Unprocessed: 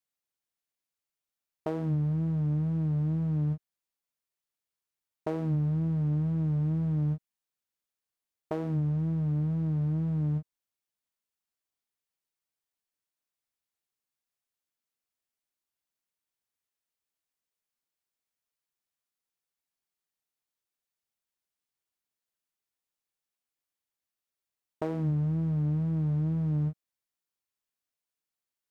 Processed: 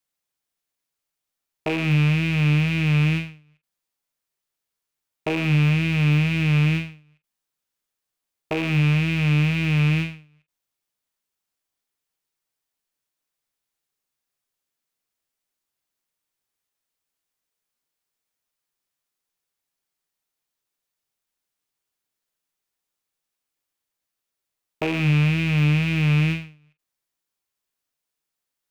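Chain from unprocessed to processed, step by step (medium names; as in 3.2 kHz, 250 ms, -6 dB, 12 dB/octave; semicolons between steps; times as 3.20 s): rattle on loud lows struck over -43 dBFS, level -23 dBFS; on a send at -9.5 dB: reverberation, pre-delay 6 ms; on the sum: endings held to a fixed fall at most 130 dB/s; trim +6 dB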